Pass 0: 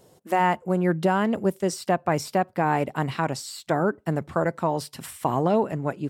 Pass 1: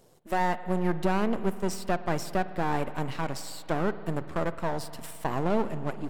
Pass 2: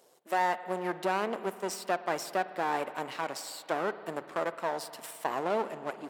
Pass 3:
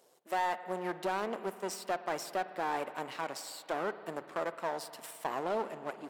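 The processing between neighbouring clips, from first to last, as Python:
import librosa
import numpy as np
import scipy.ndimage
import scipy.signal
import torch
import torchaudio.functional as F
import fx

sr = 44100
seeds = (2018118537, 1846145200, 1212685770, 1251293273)

y1 = np.where(x < 0.0, 10.0 ** (-12.0 / 20.0) * x, x)
y1 = fx.rev_spring(y1, sr, rt60_s=2.8, pass_ms=(53,), chirp_ms=25, drr_db=13.0)
y1 = F.gain(torch.from_numpy(y1), -1.5).numpy()
y2 = scipy.signal.sosfilt(scipy.signal.butter(2, 420.0, 'highpass', fs=sr, output='sos'), y1)
y3 = np.clip(10.0 ** (21.0 / 20.0) * y2, -1.0, 1.0) / 10.0 ** (21.0 / 20.0)
y3 = F.gain(torch.from_numpy(y3), -3.0).numpy()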